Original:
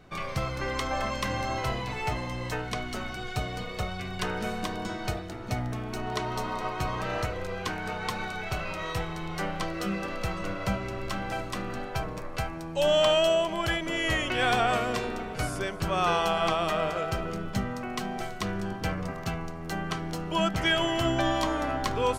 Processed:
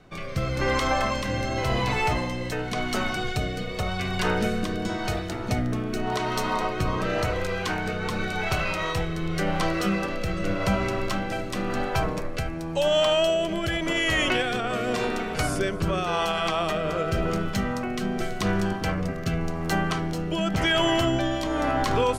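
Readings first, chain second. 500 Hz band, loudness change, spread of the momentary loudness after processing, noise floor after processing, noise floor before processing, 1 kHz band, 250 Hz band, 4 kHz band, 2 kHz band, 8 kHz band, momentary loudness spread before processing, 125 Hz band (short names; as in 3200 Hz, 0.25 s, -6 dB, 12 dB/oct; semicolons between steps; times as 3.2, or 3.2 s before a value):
+3.0 dB, +3.5 dB, 7 LU, -32 dBFS, -37 dBFS, +2.0 dB, +6.0 dB, +3.0 dB, +4.0 dB, +3.5 dB, 9 LU, +5.0 dB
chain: notches 60/120 Hz; AGC gain up to 4.5 dB; limiter -17.5 dBFS, peak gain reduction 10 dB; rotary speaker horn 0.9 Hz; gain +4.5 dB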